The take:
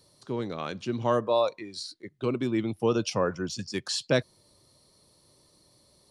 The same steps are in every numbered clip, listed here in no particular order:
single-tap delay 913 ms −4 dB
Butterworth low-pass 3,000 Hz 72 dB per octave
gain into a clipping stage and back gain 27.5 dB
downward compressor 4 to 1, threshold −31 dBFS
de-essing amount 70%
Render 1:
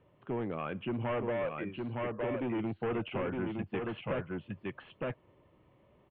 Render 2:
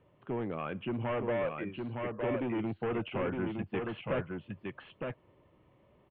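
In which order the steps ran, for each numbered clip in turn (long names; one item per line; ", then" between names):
gain into a clipping stage and back, then de-essing, then single-tap delay, then downward compressor, then Butterworth low-pass
gain into a clipping stage and back, then downward compressor, then single-tap delay, then de-essing, then Butterworth low-pass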